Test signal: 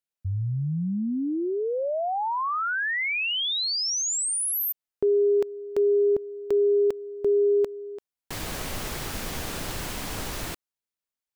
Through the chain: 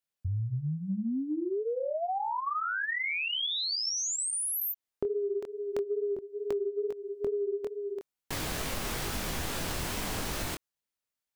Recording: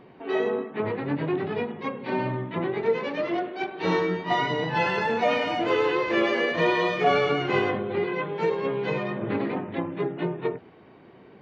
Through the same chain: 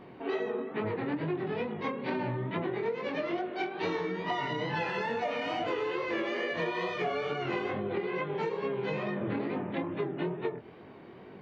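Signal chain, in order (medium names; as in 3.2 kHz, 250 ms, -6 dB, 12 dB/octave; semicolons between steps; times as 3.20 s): chorus 2.3 Hz, delay 19 ms, depth 6.9 ms; compression 10:1, threshold -33 dBFS; trim +4 dB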